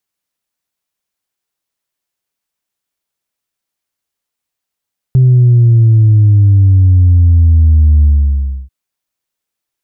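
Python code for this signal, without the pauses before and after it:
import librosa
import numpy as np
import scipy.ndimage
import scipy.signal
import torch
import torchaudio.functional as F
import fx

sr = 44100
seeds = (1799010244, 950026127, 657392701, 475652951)

y = fx.sub_drop(sr, level_db=-4.0, start_hz=130.0, length_s=3.54, drive_db=0.0, fade_s=0.65, end_hz=65.0)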